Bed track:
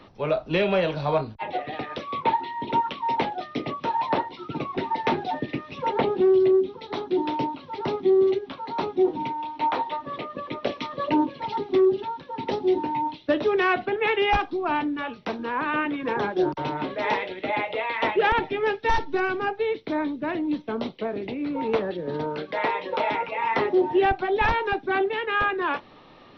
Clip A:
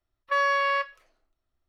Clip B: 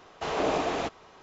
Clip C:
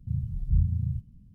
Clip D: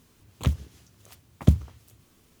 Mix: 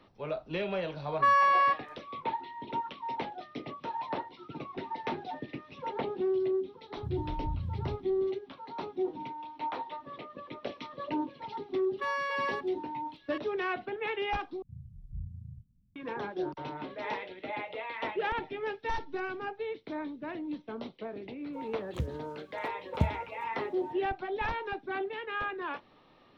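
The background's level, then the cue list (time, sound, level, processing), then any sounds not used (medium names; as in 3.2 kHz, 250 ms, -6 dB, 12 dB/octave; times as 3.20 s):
bed track -11 dB
0.91 s: add A -7.5 dB + peaking EQ 1.1 kHz +10.5 dB 0.74 oct
6.96 s: add C -5 dB + compression, threshold -25 dBFS
11.70 s: add A -9.5 dB + chunks repeated in reverse 610 ms, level -5 dB
14.62 s: replace with C -17 dB
21.53 s: add D -10 dB + treble shelf 6.4 kHz -8 dB
not used: B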